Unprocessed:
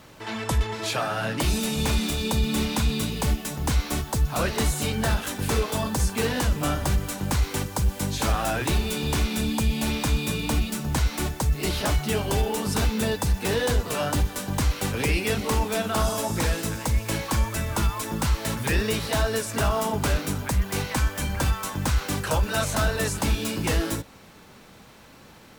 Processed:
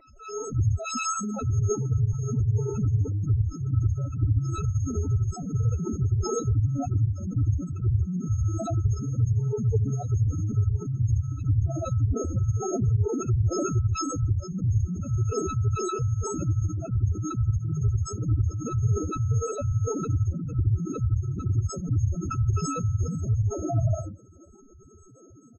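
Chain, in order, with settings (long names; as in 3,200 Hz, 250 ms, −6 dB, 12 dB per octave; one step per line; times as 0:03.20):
samples sorted by size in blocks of 64 samples
graphic EQ with 15 bands 100 Hz −9 dB, 630 Hz −6 dB, 4,000 Hz +4 dB, 10,000 Hz −7 dB
loudspeakers that aren't time-aligned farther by 25 metres −1 dB, 46 metres −2 dB
spectral peaks only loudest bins 4
phase-vocoder pitch shift with formants kept +11 semitones
level +4 dB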